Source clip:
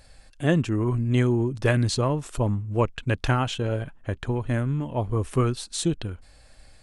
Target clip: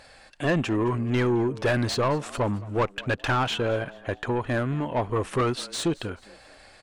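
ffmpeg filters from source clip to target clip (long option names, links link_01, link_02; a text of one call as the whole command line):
ffmpeg -i in.wav -filter_complex "[0:a]asplit=2[link_01][link_02];[link_02]highpass=frequency=720:poles=1,volume=25dB,asoftclip=type=tanh:threshold=-6dB[link_03];[link_01][link_03]amix=inputs=2:normalize=0,lowpass=frequency=2100:poles=1,volume=-6dB,asplit=4[link_04][link_05][link_06][link_07];[link_05]adelay=216,afreqshift=94,volume=-21dB[link_08];[link_06]adelay=432,afreqshift=188,volume=-28.5dB[link_09];[link_07]adelay=648,afreqshift=282,volume=-36.1dB[link_10];[link_04][link_08][link_09][link_10]amix=inputs=4:normalize=0,volume=-7.5dB" out.wav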